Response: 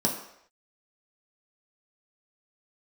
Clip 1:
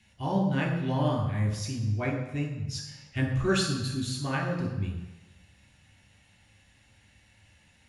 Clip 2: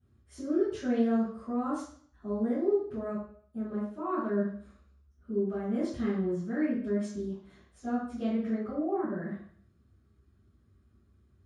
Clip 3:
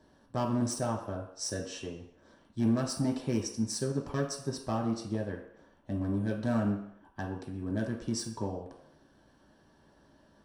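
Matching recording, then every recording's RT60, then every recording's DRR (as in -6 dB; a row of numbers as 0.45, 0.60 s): 3; 1.0 s, 0.55 s, not exponential; -1.0, -18.5, -1.5 dB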